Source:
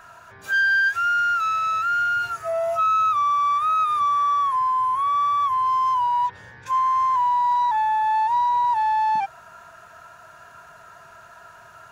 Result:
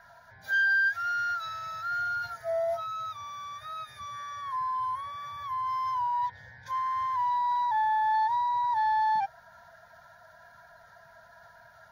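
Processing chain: coarse spectral quantiser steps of 15 dB; static phaser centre 1.8 kHz, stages 8; trim -4 dB

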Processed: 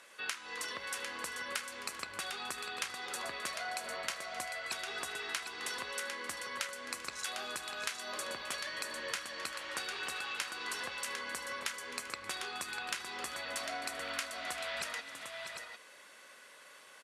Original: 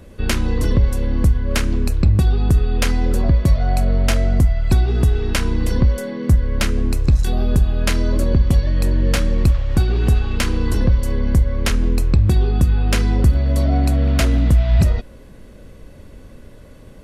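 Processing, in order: Chebyshev band-pass 1.3–9.8 kHz, order 2; compression 10:1, threshold -36 dBFS, peak gain reduction 16.5 dB; multi-tap echo 262/391/645/751 ms -16.5/-18/-8.5/-7 dB

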